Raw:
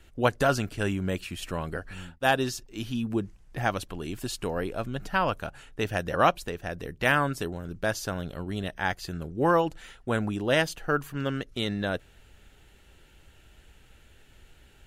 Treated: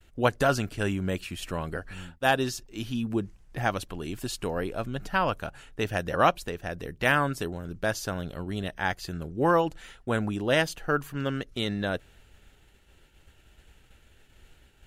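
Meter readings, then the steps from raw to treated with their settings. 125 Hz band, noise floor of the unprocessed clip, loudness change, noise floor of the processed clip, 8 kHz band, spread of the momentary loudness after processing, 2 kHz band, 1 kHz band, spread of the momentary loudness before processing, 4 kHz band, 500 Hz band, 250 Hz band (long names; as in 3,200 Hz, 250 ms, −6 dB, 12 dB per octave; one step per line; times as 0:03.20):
0.0 dB, −57 dBFS, 0.0 dB, −60 dBFS, 0.0 dB, 12 LU, 0.0 dB, 0.0 dB, 12 LU, 0.0 dB, 0.0 dB, 0.0 dB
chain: downward expander −51 dBFS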